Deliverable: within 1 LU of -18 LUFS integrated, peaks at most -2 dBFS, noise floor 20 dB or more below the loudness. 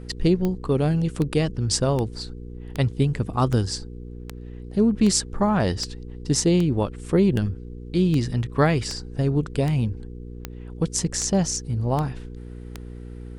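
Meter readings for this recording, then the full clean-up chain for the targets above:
clicks 17; hum 60 Hz; harmonics up to 480 Hz; hum level -35 dBFS; loudness -23.5 LUFS; peak -5.5 dBFS; loudness target -18.0 LUFS
-> de-click; de-hum 60 Hz, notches 8; gain +5.5 dB; limiter -2 dBFS

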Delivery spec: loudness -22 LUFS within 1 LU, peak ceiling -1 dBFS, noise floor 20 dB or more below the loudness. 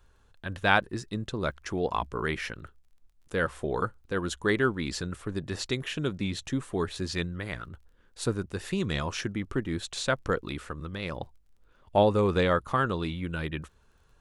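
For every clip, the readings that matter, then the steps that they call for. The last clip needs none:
ticks 15/s; loudness -30.0 LUFS; peak -5.5 dBFS; loudness target -22.0 LUFS
-> de-click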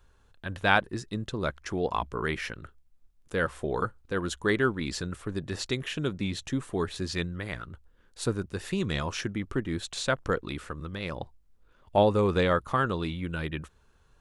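ticks 0/s; loudness -30.0 LUFS; peak -5.5 dBFS; loudness target -22.0 LUFS
-> gain +8 dB; limiter -1 dBFS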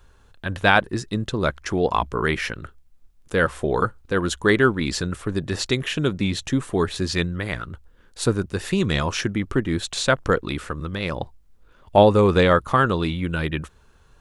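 loudness -22.5 LUFS; peak -1.0 dBFS; noise floor -55 dBFS

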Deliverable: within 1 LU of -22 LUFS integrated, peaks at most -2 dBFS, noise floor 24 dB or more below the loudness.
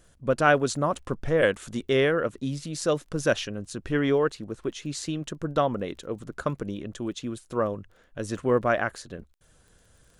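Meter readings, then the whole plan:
ticks 22/s; loudness -27.5 LUFS; peak -6.5 dBFS; loudness target -22.0 LUFS
-> de-click; gain +5.5 dB; limiter -2 dBFS

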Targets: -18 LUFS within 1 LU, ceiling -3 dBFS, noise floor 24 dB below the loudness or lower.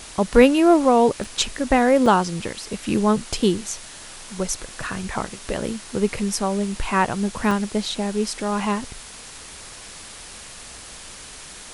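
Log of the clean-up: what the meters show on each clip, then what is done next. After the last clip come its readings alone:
dropouts 3; longest dropout 2.9 ms; noise floor -40 dBFS; noise floor target -45 dBFS; loudness -21.0 LUFS; peak -1.5 dBFS; loudness target -18.0 LUFS
-> interpolate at 1.24/2.06/7.51, 2.9 ms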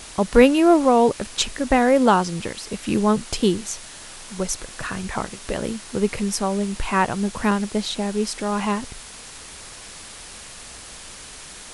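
dropouts 0; noise floor -40 dBFS; noise floor target -45 dBFS
-> denoiser 6 dB, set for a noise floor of -40 dBFS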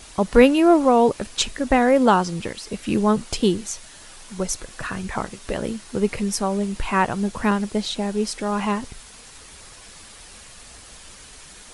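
noise floor -44 dBFS; noise floor target -46 dBFS
-> denoiser 6 dB, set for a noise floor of -44 dBFS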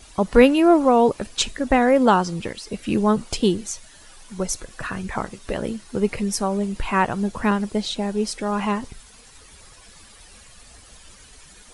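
noise floor -48 dBFS; loudness -21.5 LUFS; peak -1.5 dBFS; loudness target -18.0 LUFS
-> gain +3.5 dB; limiter -3 dBFS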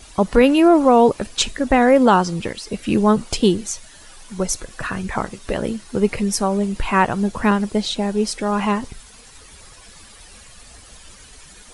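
loudness -18.5 LUFS; peak -3.0 dBFS; noise floor -45 dBFS

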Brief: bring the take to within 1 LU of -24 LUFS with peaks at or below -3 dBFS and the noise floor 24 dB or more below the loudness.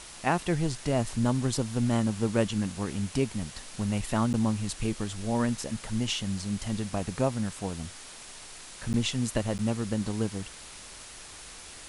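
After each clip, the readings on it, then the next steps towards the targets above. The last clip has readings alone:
dropouts 3; longest dropout 9.9 ms; noise floor -46 dBFS; noise floor target -54 dBFS; loudness -30.0 LUFS; peak -12.5 dBFS; loudness target -24.0 LUFS
-> interpolate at 4.33/8.93/9.58, 9.9 ms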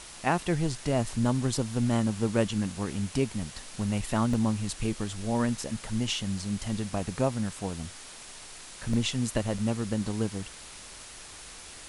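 dropouts 0; noise floor -46 dBFS; noise floor target -54 dBFS
-> denoiser 8 dB, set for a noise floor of -46 dBFS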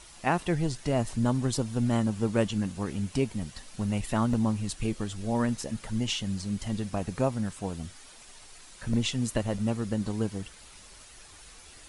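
noise floor -51 dBFS; noise floor target -54 dBFS
-> denoiser 6 dB, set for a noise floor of -51 dBFS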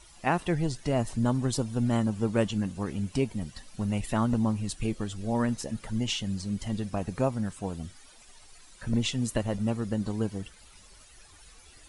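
noise floor -54 dBFS; loudness -30.0 LUFS; peak -12.5 dBFS; loudness target -24.0 LUFS
-> gain +6 dB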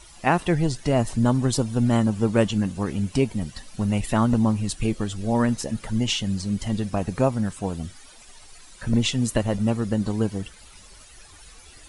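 loudness -24.0 LUFS; peak -6.5 dBFS; noise floor -48 dBFS

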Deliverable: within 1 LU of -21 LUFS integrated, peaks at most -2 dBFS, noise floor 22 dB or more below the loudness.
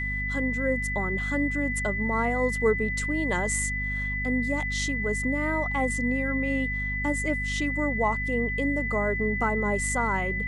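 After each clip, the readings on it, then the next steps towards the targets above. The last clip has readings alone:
hum 50 Hz; harmonics up to 250 Hz; hum level -30 dBFS; steady tone 2000 Hz; tone level -29 dBFS; loudness -26.5 LUFS; peak -12.0 dBFS; loudness target -21.0 LUFS
-> de-hum 50 Hz, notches 5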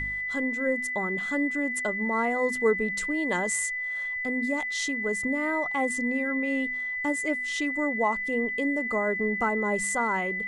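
hum none; steady tone 2000 Hz; tone level -29 dBFS
-> notch 2000 Hz, Q 30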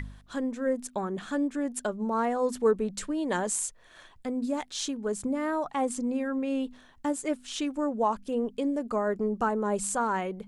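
steady tone none; loudness -30.0 LUFS; peak -13.5 dBFS; loudness target -21.0 LUFS
-> gain +9 dB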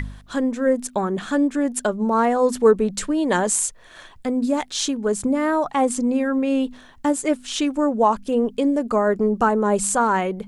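loudness -21.0 LUFS; peak -4.5 dBFS; noise floor -47 dBFS

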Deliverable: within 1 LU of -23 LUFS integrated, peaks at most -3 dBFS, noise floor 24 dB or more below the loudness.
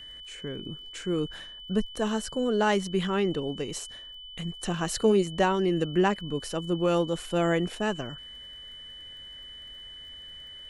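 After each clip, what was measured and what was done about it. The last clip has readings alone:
ticks 27/s; steady tone 3000 Hz; tone level -42 dBFS; loudness -28.0 LUFS; peak -10.5 dBFS; loudness target -23.0 LUFS
-> de-click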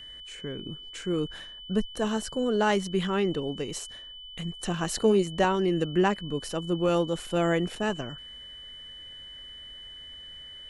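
ticks 0/s; steady tone 3000 Hz; tone level -42 dBFS
-> notch 3000 Hz, Q 30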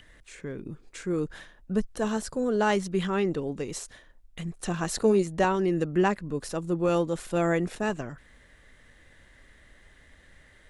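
steady tone none; loudness -28.0 LUFS; peak -10.5 dBFS; loudness target -23.0 LUFS
-> gain +5 dB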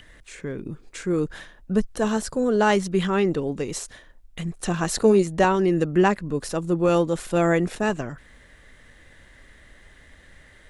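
loudness -23.0 LUFS; peak -5.5 dBFS; noise floor -52 dBFS

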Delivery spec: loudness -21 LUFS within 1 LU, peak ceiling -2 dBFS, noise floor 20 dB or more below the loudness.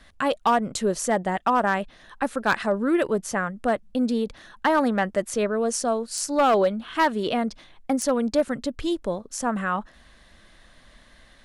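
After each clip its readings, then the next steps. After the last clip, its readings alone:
clipped 0.5%; flat tops at -13.0 dBFS; loudness -24.5 LUFS; peak -13.0 dBFS; loudness target -21.0 LUFS
-> clip repair -13 dBFS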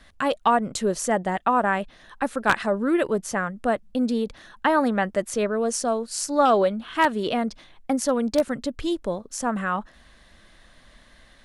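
clipped 0.0%; loudness -24.5 LUFS; peak -4.0 dBFS; loudness target -21.0 LUFS
-> gain +3.5 dB; limiter -2 dBFS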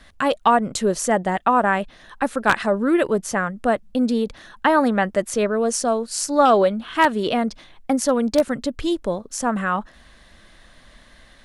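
loudness -21.0 LUFS; peak -2.0 dBFS; noise floor -51 dBFS

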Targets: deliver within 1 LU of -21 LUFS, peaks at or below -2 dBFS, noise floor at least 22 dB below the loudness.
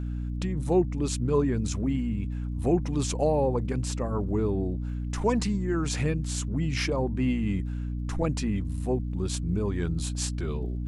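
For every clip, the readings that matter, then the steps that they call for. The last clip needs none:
ticks 33/s; hum 60 Hz; harmonics up to 300 Hz; hum level -29 dBFS; loudness -28.5 LUFS; peak -11.5 dBFS; loudness target -21.0 LUFS
-> de-click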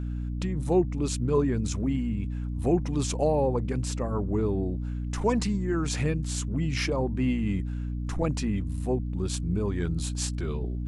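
ticks 0.092/s; hum 60 Hz; harmonics up to 300 Hz; hum level -29 dBFS
-> notches 60/120/180/240/300 Hz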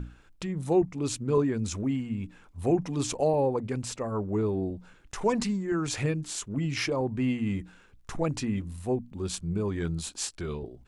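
hum none; loudness -30.0 LUFS; peak -13.5 dBFS; loudness target -21.0 LUFS
-> gain +9 dB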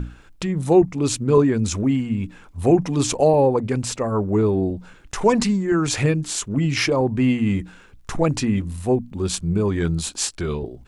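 loudness -21.0 LUFS; peak -4.5 dBFS; noise floor -48 dBFS

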